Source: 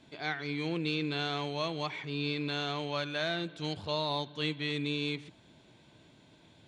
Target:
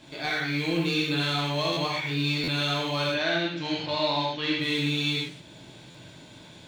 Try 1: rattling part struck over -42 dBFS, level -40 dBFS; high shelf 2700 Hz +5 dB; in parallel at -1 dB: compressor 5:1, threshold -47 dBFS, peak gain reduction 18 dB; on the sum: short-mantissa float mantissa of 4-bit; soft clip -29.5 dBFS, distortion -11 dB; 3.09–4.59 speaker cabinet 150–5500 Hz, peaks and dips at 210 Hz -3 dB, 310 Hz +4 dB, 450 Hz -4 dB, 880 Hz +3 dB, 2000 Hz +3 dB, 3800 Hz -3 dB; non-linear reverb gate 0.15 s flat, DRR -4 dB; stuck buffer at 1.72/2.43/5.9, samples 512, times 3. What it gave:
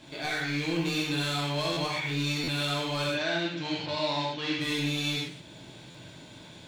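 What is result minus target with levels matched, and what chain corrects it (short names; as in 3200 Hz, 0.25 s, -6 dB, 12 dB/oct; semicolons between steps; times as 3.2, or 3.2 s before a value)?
soft clip: distortion +12 dB
rattling part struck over -42 dBFS, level -40 dBFS; high shelf 2700 Hz +5 dB; in parallel at -1 dB: compressor 5:1, threshold -47 dBFS, peak gain reduction 18 dB; on the sum: short-mantissa float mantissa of 4-bit; soft clip -19.5 dBFS, distortion -23 dB; 3.09–4.59 speaker cabinet 150–5500 Hz, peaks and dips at 210 Hz -3 dB, 310 Hz +4 dB, 450 Hz -4 dB, 880 Hz +3 dB, 2000 Hz +3 dB, 3800 Hz -3 dB; non-linear reverb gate 0.15 s flat, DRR -4 dB; stuck buffer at 1.72/2.43/5.9, samples 512, times 3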